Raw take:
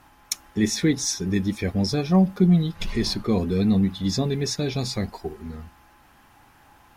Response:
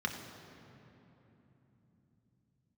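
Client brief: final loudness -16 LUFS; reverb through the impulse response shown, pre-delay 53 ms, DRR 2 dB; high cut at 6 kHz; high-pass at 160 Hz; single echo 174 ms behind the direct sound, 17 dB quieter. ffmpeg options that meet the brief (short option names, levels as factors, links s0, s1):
-filter_complex "[0:a]highpass=160,lowpass=6000,aecho=1:1:174:0.141,asplit=2[s0][s1];[1:a]atrim=start_sample=2205,adelay=53[s2];[s1][s2]afir=irnorm=-1:irlink=0,volume=0.447[s3];[s0][s3]amix=inputs=2:normalize=0,volume=1.88"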